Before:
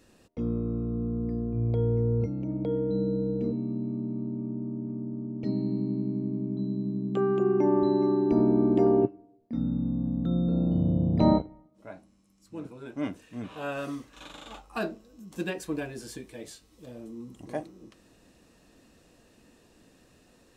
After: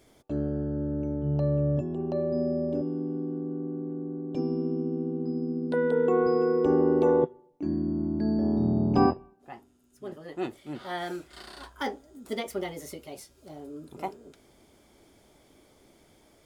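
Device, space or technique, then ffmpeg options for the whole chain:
nightcore: -af "asetrate=55125,aresample=44100"

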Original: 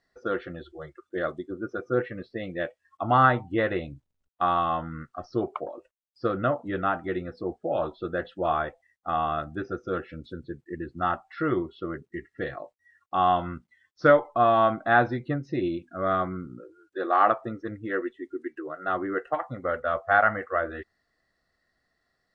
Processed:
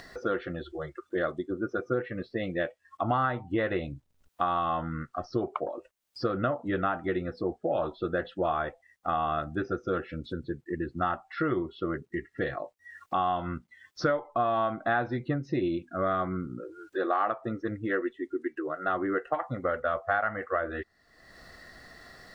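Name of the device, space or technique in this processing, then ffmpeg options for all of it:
upward and downward compression: -af "acompressor=mode=upward:threshold=0.02:ratio=2.5,acompressor=threshold=0.0447:ratio=5,volume=1.33"

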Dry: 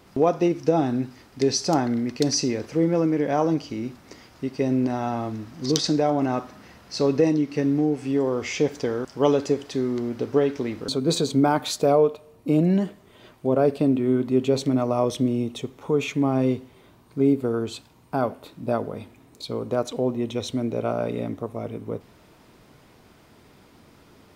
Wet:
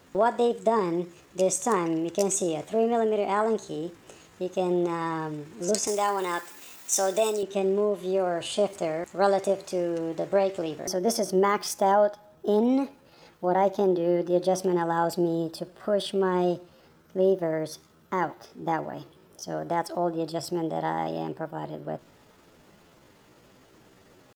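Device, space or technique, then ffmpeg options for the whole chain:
chipmunk voice: -filter_complex "[0:a]asetrate=60591,aresample=44100,atempo=0.727827,asettb=1/sr,asplit=3[s0][s1][s2];[s0]atrim=end=5.874[s3];[s1]atrim=start=5.87:end=7.43,asetpts=PTS-STARTPTS,afade=t=in:d=0.004:c=qsin,afade=t=out:st=1.556:d=0.004:c=qsin,aemphasis=mode=production:type=riaa[s4];[s2]atrim=start=7.426[s5];[s3][s4]acrossfade=d=0.004:c1=hsin:c2=qsin[s6];[s6][s5]acrossfade=d=0.004:c1=qsin:c2=hsin,volume=0.708"

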